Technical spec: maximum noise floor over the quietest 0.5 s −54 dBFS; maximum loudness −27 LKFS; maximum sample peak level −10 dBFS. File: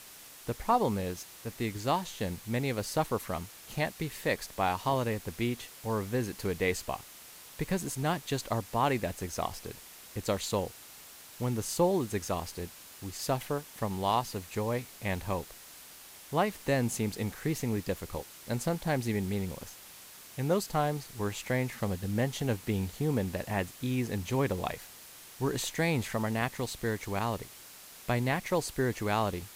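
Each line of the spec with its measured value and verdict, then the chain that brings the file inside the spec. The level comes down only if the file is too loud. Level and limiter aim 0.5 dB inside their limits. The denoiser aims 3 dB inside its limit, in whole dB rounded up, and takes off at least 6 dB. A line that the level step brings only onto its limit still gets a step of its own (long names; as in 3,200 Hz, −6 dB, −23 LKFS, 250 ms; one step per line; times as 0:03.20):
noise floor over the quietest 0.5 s −51 dBFS: out of spec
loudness −32.5 LKFS: in spec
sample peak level −14.0 dBFS: in spec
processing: broadband denoise 6 dB, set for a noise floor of −51 dBFS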